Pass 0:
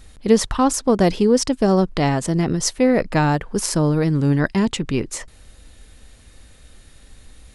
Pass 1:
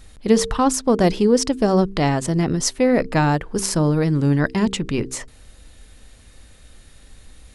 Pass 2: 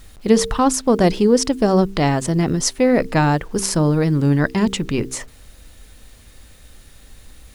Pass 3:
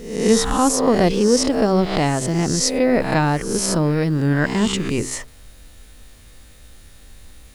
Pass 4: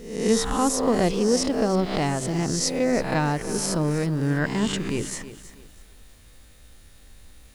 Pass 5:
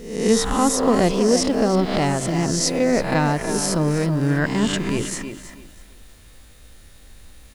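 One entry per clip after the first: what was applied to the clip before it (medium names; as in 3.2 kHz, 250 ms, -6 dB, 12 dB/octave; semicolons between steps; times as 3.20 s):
de-hum 64.87 Hz, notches 7
bit crusher 9-bit; trim +1.5 dB
reverse spectral sustain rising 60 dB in 0.71 s; trim -2.5 dB
bit-crushed delay 323 ms, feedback 35%, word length 7-bit, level -14 dB; trim -5.5 dB
speakerphone echo 320 ms, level -8 dB; trim +3.5 dB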